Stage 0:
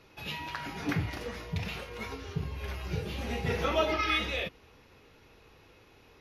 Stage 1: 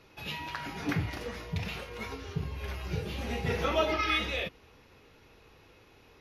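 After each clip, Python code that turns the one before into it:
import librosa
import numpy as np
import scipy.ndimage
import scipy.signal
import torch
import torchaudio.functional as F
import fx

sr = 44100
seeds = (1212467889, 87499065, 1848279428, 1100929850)

y = x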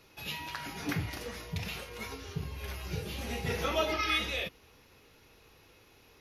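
y = fx.high_shelf(x, sr, hz=5300.0, db=12.0)
y = y * 10.0 ** (-3.0 / 20.0)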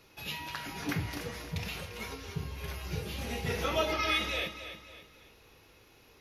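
y = fx.echo_feedback(x, sr, ms=278, feedback_pct=39, wet_db=-11.0)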